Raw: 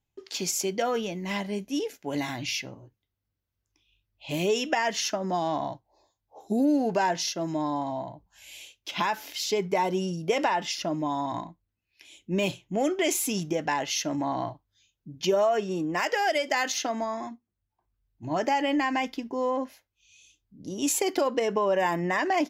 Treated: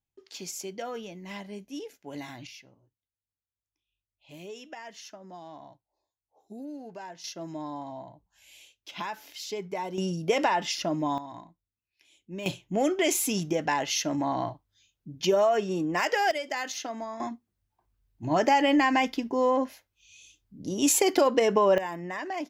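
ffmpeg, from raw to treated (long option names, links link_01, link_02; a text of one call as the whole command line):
ffmpeg -i in.wav -af "asetnsamples=nb_out_samples=441:pad=0,asendcmd='2.47 volume volume -17dB;7.24 volume volume -8dB;9.98 volume volume 0.5dB;11.18 volume volume -11dB;12.46 volume volume 0.5dB;16.31 volume volume -6dB;17.2 volume volume 3.5dB;21.78 volume volume -8.5dB',volume=-9dB" out.wav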